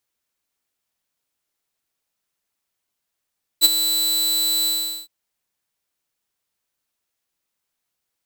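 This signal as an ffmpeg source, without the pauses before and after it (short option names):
-f lavfi -i "aevalsrc='0.562*(2*mod(3980*t,1)-1)':d=1.464:s=44100,afade=t=in:d=0.039,afade=t=out:st=0.039:d=0.023:silence=0.299,afade=t=out:st=1.05:d=0.414"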